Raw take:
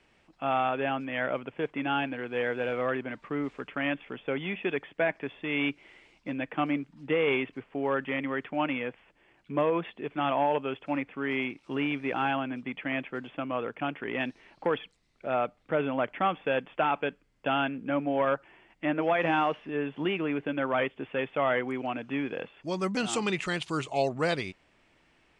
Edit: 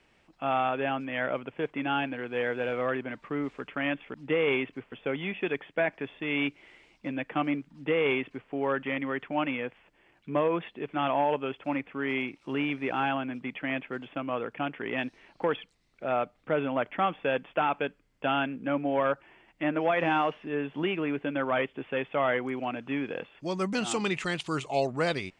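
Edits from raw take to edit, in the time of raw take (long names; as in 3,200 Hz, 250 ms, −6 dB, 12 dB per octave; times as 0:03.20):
0:06.94–0:07.72: duplicate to 0:04.14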